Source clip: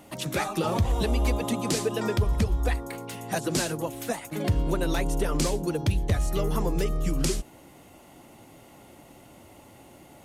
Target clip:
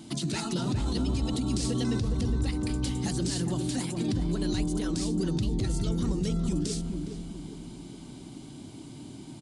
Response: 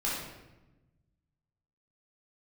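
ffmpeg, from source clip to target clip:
-filter_complex "[0:a]equalizer=frequency=125:width_type=o:width=1:gain=7,equalizer=frequency=250:width_type=o:width=1:gain=11,equalizer=frequency=500:width_type=o:width=1:gain=-10,equalizer=frequency=1000:width_type=o:width=1:gain=-4,equalizer=frequency=2000:width_type=o:width=1:gain=-4,equalizer=frequency=4000:width_type=o:width=1:gain=9,equalizer=frequency=8000:width_type=o:width=1:gain=4,alimiter=limit=-22.5dB:level=0:latency=1:release=36,asplit=2[link_01][link_02];[link_02]adelay=448,lowpass=frequency=1000:poles=1,volume=-4.5dB,asplit=2[link_03][link_04];[link_04]adelay=448,lowpass=frequency=1000:poles=1,volume=0.46,asplit=2[link_05][link_06];[link_06]adelay=448,lowpass=frequency=1000:poles=1,volume=0.46,asplit=2[link_07][link_08];[link_08]adelay=448,lowpass=frequency=1000:poles=1,volume=0.46,asplit=2[link_09][link_10];[link_10]adelay=448,lowpass=frequency=1000:poles=1,volume=0.46,asplit=2[link_11][link_12];[link_12]adelay=448,lowpass=frequency=1000:poles=1,volume=0.46[link_13];[link_03][link_05][link_07][link_09][link_11][link_13]amix=inputs=6:normalize=0[link_14];[link_01][link_14]amix=inputs=2:normalize=0,asetrate=48000,aresample=44100,aresample=22050,aresample=44100"

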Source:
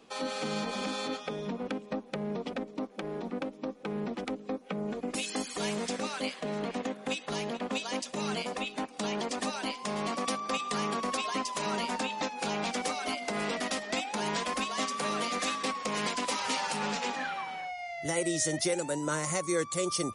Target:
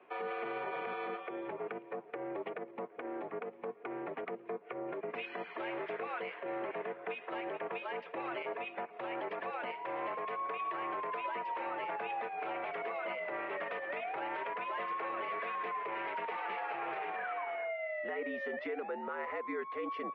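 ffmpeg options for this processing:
ffmpeg -i in.wav -af "highpass=frequency=450:width_type=q:width=0.5412,highpass=frequency=450:width_type=q:width=1.307,lowpass=frequency=2500:width_type=q:width=0.5176,lowpass=frequency=2500:width_type=q:width=0.7071,lowpass=frequency=2500:width_type=q:width=1.932,afreqshift=-72,alimiter=level_in=7dB:limit=-24dB:level=0:latency=1:release=64,volume=-7dB,volume=1dB" out.wav

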